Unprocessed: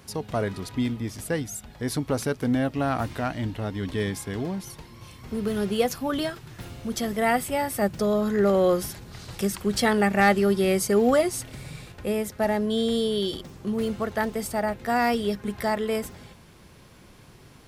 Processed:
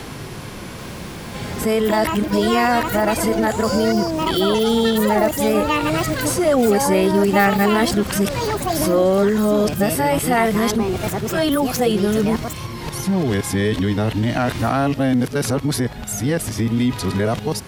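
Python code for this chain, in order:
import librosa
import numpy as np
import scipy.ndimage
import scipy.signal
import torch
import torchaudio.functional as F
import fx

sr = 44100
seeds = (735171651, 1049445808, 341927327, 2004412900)

p1 = x[::-1].copy()
p2 = fx.over_compress(p1, sr, threshold_db=-31.0, ratio=-1.0)
p3 = p1 + (p2 * librosa.db_to_amplitude(0.0))
p4 = fx.hpss(p3, sr, part='harmonic', gain_db=4)
p5 = fx.echo_pitch(p4, sr, ms=785, semitones=7, count=3, db_per_echo=-6.0)
y = fx.band_squash(p5, sr, depth_pct=40)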